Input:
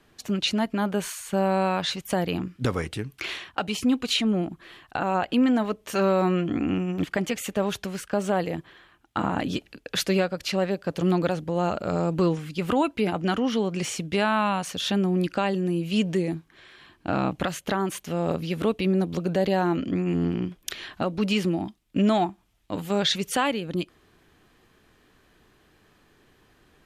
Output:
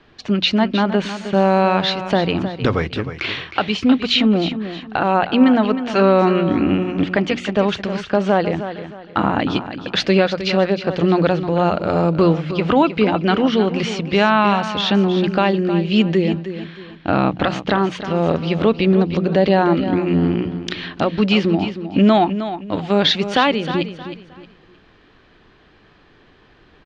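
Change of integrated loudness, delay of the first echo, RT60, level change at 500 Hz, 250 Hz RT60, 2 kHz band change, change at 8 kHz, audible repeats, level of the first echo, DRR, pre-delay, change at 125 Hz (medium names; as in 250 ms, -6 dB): +8.5 dB, 312 ms, no reverb, +9.0 dB, no reverb, +9.0 dB, no reading, 3, -11.0 dB, no reverb, no reverb, +7.5 dB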